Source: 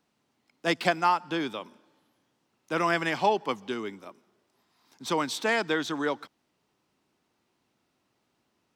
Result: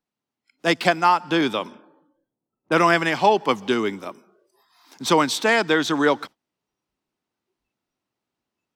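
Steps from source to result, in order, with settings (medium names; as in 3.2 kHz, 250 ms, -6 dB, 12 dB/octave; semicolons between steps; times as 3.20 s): spectral noise reduction 20 dB; 1.41–2.72 s: level-controlled noise filter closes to 610 Hz, open at -32.5 dBFS; gain riding within 3 dB 0.5 s; trim +8.5 dB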